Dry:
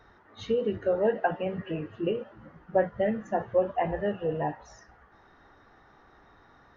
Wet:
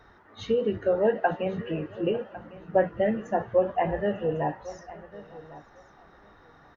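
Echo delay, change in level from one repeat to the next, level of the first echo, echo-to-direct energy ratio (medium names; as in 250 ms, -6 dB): 900 ms, no regular repeats, -23.5 dB, -17.0 dB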